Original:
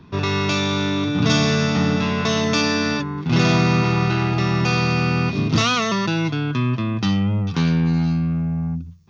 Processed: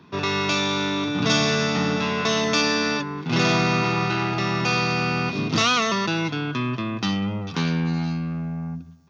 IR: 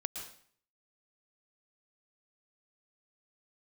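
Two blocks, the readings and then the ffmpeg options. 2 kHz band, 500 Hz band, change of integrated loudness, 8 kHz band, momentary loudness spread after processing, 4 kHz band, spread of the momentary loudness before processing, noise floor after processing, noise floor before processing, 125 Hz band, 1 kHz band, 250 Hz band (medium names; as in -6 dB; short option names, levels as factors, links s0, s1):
0.0 dB, -1.5 dB, -3.0 dB, no reading, 7 LU, 0.0 dB, 5 LU, -35 dBFS, -30 dBFS, -7.0 dB, 0.0 dB, -4.5 dB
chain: -filter_complex "[0:a]highpass=110,lowshelf=f=220:g=-8,asplit=2[s0][s1];[s1]adelay=193,lowpass=f=2200:p=1,volume=0.112,asplit=2[s2][s3];[s3]adelay=193,lowpass=f=2200:p=1,volume=0.54,asplit=2[s4][s5];[s5]adelay=193,lowpass=f=2200:p=1,volume=0.54,asplit=2[s6][s7];[s7]adelay=193,lowpass=f=2200:p=1,volume=0.54[s8];[s2][s4][s6][s8]amix=inputs=4:normalize=0[s9];[s0][s9]amix=inputs=2:normalize=0"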